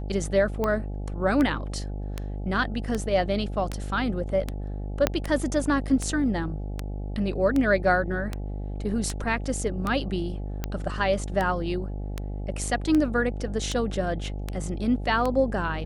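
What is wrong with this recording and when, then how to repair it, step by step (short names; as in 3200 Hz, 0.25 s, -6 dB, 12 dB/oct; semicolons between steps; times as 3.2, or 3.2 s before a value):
buzz 50 Hz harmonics 17 -32 dBFS
tick 78 rpm -14 dBFS
5.07 pop -6 dBFS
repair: de-click; de-hum 50 Hz, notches 17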